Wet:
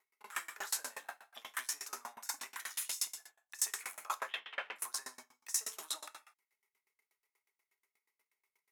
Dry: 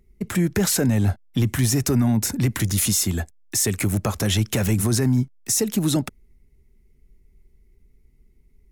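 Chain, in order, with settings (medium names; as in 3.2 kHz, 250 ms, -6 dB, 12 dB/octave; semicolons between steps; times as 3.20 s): 0.60–1.23 s: block-companded coder 7-bit; 4.15–4.76 s: inverse Chebyshev low-pass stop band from 7 kHz, stop band 50 dB; peak limiter -22 dBFS, peak gain reduction 11 dB; 3.08–3.59 s: level held to a coarse grid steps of 21 dB; transient shaper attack +6 dB, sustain -3 dB; one-sided clip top -22.5 dBFS; ladder high-pass 840 Hz, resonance 45%; gated-style reverb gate 270 ms falling, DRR 2.5 dB; sawtooth tremolo in dB decaying 8.3 Hz, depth 28 dB; trim +9.5 dB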